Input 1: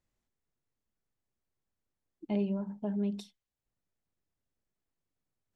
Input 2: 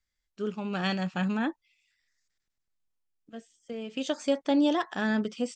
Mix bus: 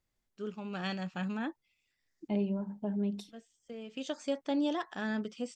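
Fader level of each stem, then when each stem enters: −0.5, −7.0 decibels; 0.00, 0.00 seconds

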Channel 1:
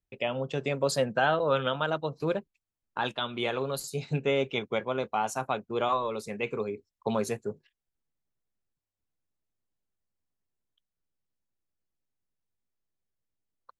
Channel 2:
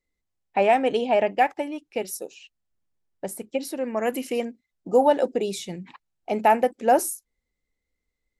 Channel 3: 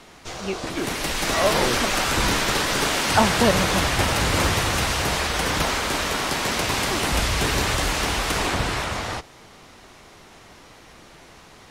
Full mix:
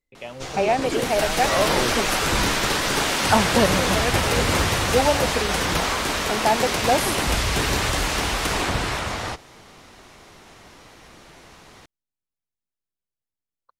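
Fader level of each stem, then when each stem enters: −6.0, −2.0, 0.0 decibels; 0.00, 0.00, 0.15 seconds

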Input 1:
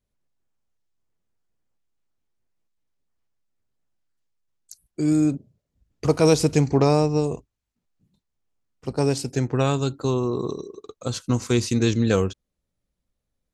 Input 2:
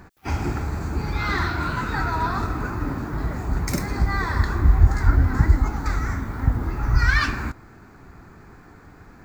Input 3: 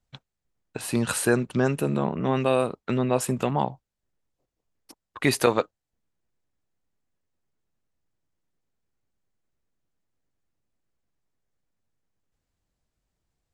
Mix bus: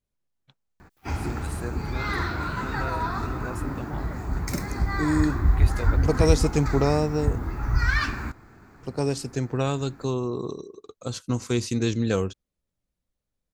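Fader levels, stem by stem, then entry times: −4.0, −4.0, −15.0 decibels; 0.00, 0.80, 0.35 seconds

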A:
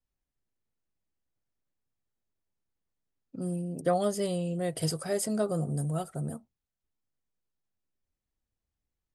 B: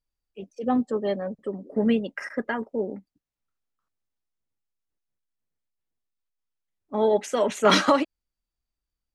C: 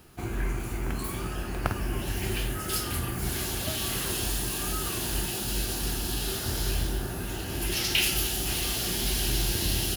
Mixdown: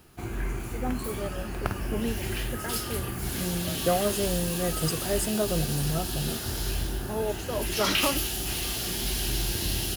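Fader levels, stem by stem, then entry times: +1.5, −9.0, −1.5 decibels; 0.00, 0.15, 0.00 seconds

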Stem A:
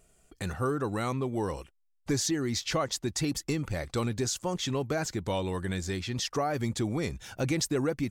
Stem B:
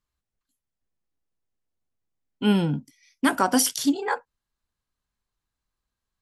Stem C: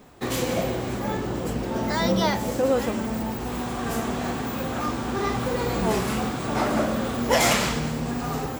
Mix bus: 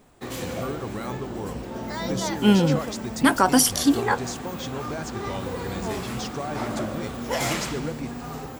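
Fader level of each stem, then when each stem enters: −3.5, +3.0, −6.5 decibels; 0.00, 0.00, 0.00 seconds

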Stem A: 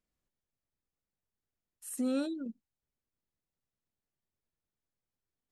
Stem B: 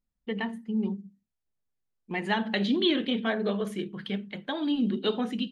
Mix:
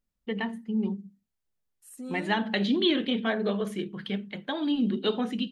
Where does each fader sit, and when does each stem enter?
−7.0, +0.5 decibels; 0.00, 0.00 seconds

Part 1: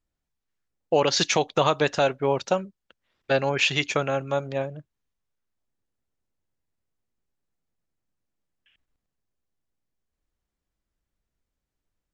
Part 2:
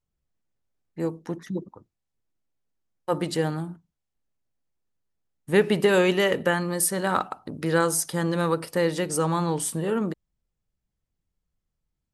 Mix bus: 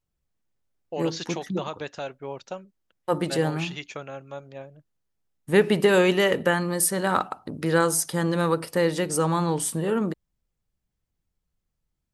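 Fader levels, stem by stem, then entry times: −12.0, +1.0 decibels; 0.00, 0.00 seconds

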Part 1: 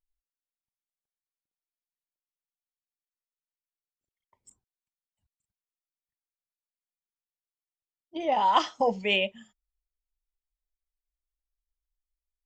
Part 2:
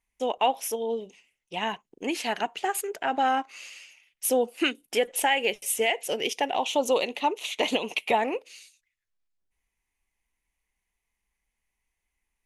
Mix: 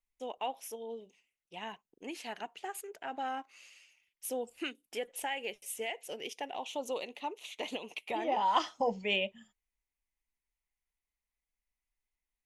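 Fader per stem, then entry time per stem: −6.0, −13.0 decibels; 0.00, 0.00 seconds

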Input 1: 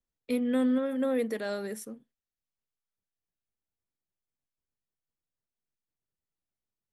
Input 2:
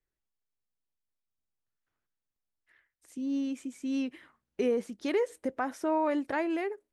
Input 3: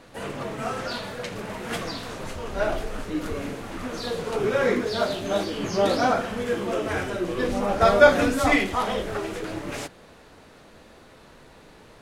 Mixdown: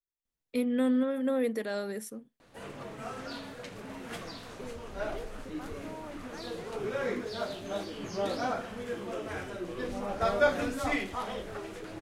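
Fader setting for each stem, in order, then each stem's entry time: −0.5, −16.5, −10.5 decibels; 0.25, 0.00, 2.40 seconds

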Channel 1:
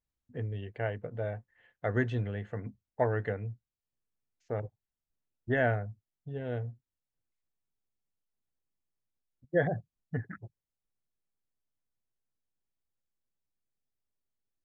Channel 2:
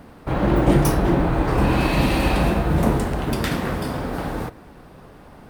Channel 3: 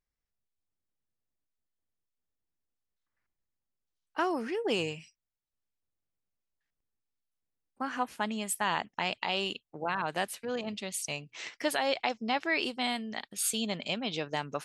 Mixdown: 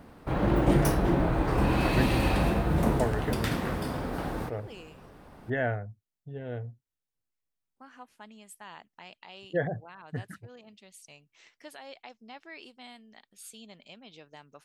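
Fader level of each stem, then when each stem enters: −1.5, −6.5, −16.5 decibels; 0.00, 0.00, 0.00 seconds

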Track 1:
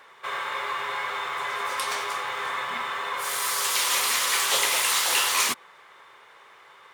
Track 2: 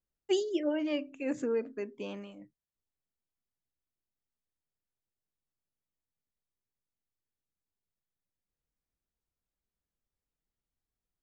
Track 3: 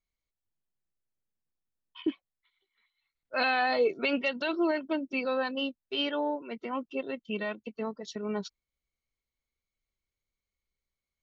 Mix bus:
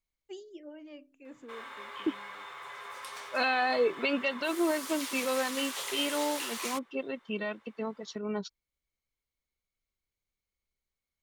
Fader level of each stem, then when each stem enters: −14.5, −16.0, −1.0 decibels; 1.25, 0.00, 0.00 seconds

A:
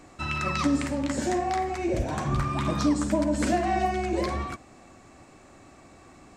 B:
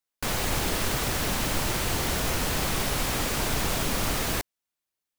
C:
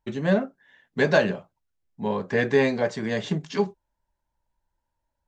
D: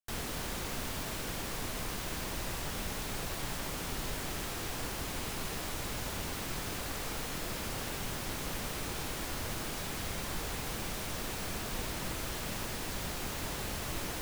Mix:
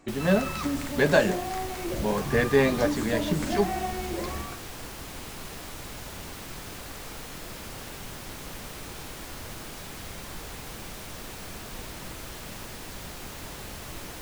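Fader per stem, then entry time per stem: −6.0, −16.5, −1.0, −2.0 decibels; 0.00, 0.00, 0.00, 0.00 seconds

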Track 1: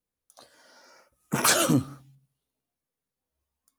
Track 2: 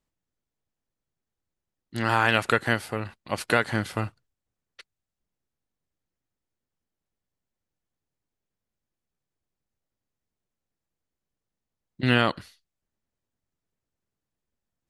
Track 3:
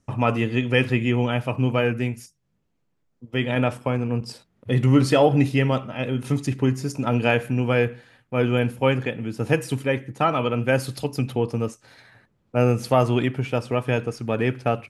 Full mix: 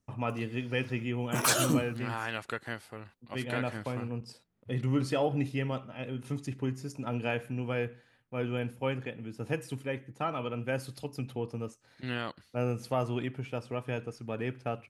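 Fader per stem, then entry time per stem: −5.0, −14.0, −12.0 decibels; 0.00, 0.00, 0.00 seconds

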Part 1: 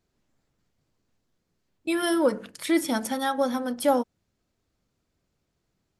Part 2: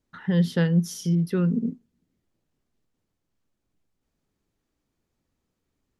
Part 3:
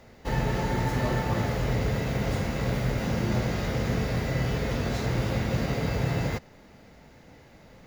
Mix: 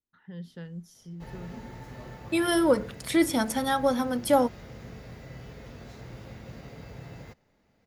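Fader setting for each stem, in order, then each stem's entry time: +0.5, −19.5, −16.5 decibels; 0.45, 0.00, 0.95 seconds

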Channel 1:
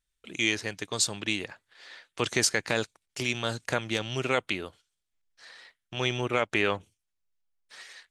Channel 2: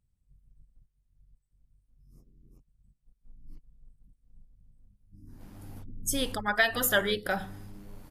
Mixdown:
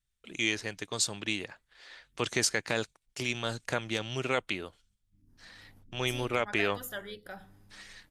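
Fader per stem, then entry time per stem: −3.0, −14.5 decibels; 0.00, 0.00 seconds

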